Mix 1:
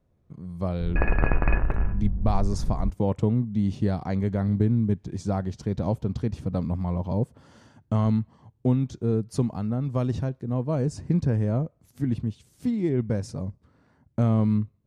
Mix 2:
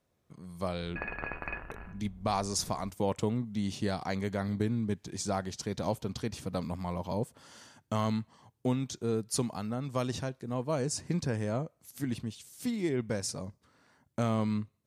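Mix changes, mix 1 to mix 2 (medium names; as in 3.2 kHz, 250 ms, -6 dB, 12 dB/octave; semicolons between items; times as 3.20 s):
background -9.5 dB; master: add tilt EQ +3.5 dB/octave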